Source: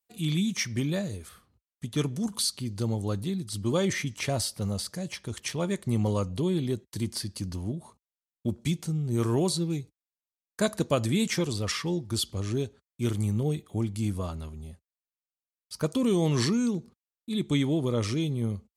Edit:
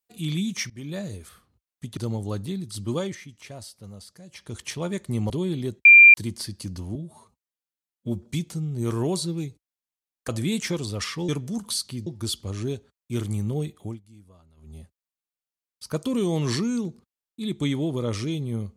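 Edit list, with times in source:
0.7–1.08 fade in, from -22.5 dB
1.97–2.75 move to 11.96
3.71–5.32 dip -12 dB, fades 0.25 s
6.08–6.35 cut
6.9 add tone 2380 Hz -6.5 dBFS 0.29 s
7.71–8.58 stretch 1.5×
10.61–10.96 cut
13.7–14.66 dip -21.5 dB, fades 0.20 s

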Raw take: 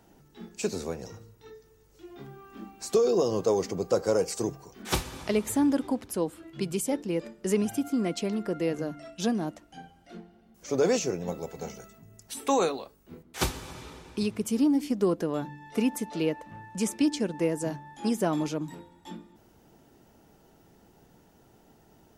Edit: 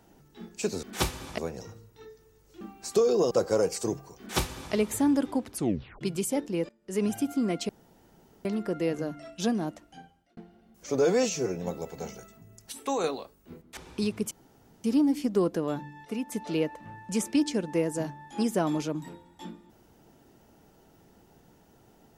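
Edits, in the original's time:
2.06–2.59 cut
3.29–3.87 cut
4.75–5.3 copy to 0.83
6.09 tape stop 0.48 s
7.25–7.61 fade in quadratic, from -22.5 dB
8.25 insert room tone 0.76 s
9.64–10.17 fade out
10.79–11.17 stretch 1.5×
12.33–12.65 gain -5 dB
13.38–13.96 cut
14.5 insert room tone 0.53 s
15.71–15.98 gain -7 dB

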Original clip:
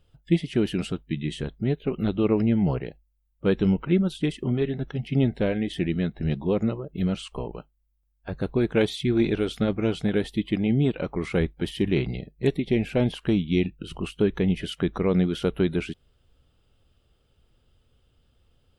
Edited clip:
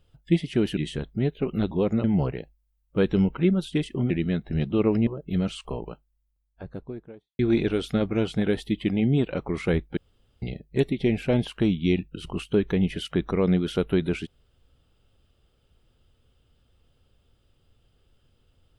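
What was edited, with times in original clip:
0.77–1.22 cut
2.16–2.52 swap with 6.41–6.74
4.58–5.8 cut
7.54–9.06 studio fade out
11.64–12.09 room tone

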